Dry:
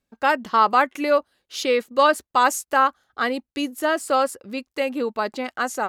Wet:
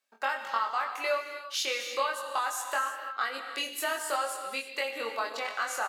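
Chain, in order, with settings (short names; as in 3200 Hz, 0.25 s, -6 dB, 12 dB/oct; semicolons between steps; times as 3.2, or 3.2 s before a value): HPF 850 Hz 12 dB/oct; compressor 6:1, threshold -30 dBFS, peak gain reduction 16 dB; doubler 22 ms -3 dB; non-linear reverb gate 0.36 s flat, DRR 5 dB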